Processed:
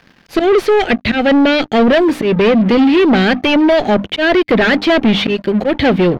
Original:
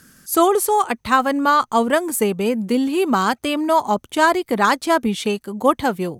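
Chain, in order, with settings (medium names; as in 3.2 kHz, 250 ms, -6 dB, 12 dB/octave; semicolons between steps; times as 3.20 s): single-diode clipper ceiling -7.5 dBFS; slow attack 164 ms; Chebyshev band-stop 640–1800 Hz, order 2; peaking EQ 3.6 kHz +7.5 dB 2.6 oct; hum notches 50/100/150/200/250/300 Hz; waveshaping leveller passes 5; distance through air 310 m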